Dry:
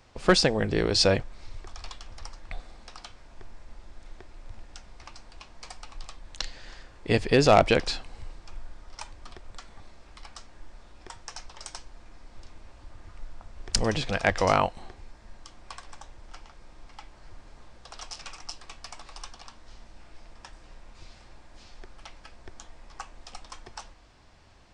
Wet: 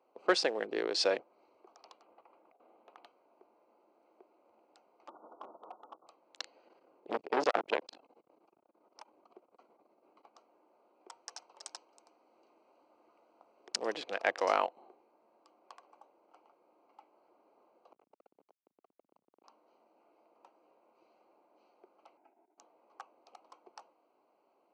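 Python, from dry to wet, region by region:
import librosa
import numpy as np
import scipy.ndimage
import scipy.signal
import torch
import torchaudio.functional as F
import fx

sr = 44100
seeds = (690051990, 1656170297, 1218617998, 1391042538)

y = fx.chain(x, sr, fx.over_compress(threshold_db=-39.0, ratio=-1.0),
    fx.resample_linear(factor=6), at=(2.02, 3.05))
y = fx.chain(y, sr, fx.clip_hard(threshold_db=-34.0),
    fx.brickwall_lowpass(high_hz=1500.0),
    fx.env_flatten(amount_pct=100), at=(5.08, 6.07))
y = fx.chain(y, sr, fx.peak_eq(hz=160.0, db=6.5, octaves=2.7),
    fx.transformer_sat(knee_hz=990.0), at=(6.66, 10.37))
y = fx.chain(y, sr, fx.high_shelf(hz=2800.0, db=8.0),
    fx.echo_single(ms=322, db=-12.5), at=(11.09, 13.69))
y = fx.chain(y, sr, fx.lowpass(hz=1300.0, slope=6),
    fx.schmitt(flips_db=-45.0),
    fx.transformer_sat(knee_hz=110.0), at=(17.92, 19.44))
y = fx.chain(y, sr, fx.high_shelf(hz=2700.0, db=-10.5),
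    fx.fixed_phaser(hz=770.0, stages=8),
    fx.over_compress(threshold_db=-46.0, ratio=-0.5), at=(22.17, 22.58))
y = fx.wiener(y, sr, points=25)
y = scipy.signal.sosfilt(scipy.signal.butter(4, 340.0, 'highpass', fs=sr, output='sos'), y)
y = fx.high_shelf(y, sr, hz=7800.0, db=-11.5)
y = F.gain(torch.from_numpy(y), -6.0).numpy()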